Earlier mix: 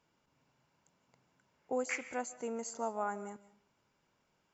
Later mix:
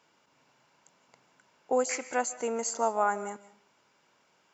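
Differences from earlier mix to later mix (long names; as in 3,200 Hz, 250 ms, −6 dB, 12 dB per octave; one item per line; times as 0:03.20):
speech +11.0 dB
master: add high-pass filter 460 Hz 6 dB per octave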